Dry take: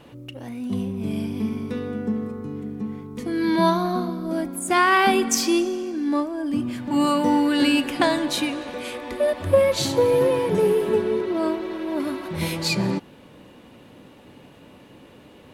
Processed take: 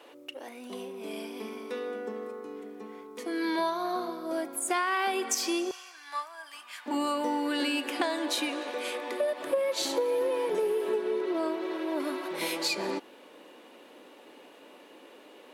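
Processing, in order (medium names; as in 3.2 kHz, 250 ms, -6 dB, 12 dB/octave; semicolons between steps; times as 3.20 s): high-pass 370 Hz 24 dB/octave, from 5.71 s 990 Hz, from 6.86 s 320 Hz; compression 4:1, threshold -25 dBFS, peak gain reduction 11 dB; trim -1.5 dB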